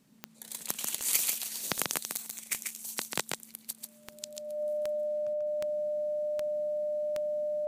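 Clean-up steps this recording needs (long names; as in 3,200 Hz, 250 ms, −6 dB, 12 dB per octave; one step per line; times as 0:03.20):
clipped peaks rebuilt −8.5 dBFS
click removal
notch filter 600 Hz, Q 30
echo removal 140 ms −4.5 dB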